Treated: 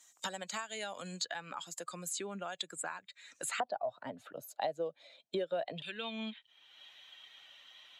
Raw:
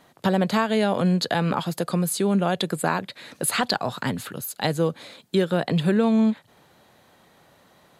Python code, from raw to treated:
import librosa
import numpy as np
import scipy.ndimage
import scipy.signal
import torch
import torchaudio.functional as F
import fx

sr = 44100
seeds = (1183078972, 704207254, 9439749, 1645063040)

y = fx.bin_expand(x, sr, power=1.5)
y = fx.bandpass_q(y, sr, hz=fx.steps((0.0, 7300.0), (3.6, 640.0), (5.82, 3100.0)), q=5.5)
y = fx.band_squash(y, sr, depth_pct=100)
y = y * 10.0 ** (4.5 / 20.0)